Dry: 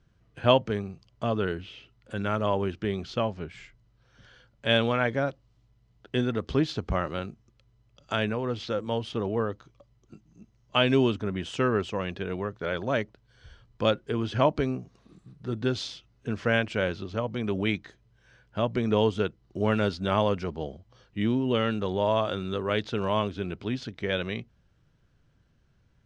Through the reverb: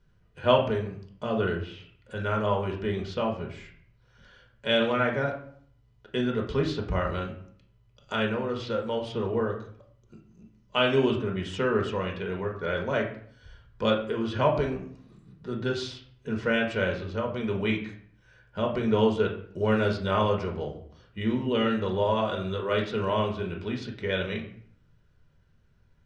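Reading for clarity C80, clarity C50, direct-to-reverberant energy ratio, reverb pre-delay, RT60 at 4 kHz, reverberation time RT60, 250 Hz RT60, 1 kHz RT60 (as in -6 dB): 12.0 dB, 8.0 dB, 0.0 dB, 4 ms, 0.45 s, 0.55 s, 0.70 s, 0.55 s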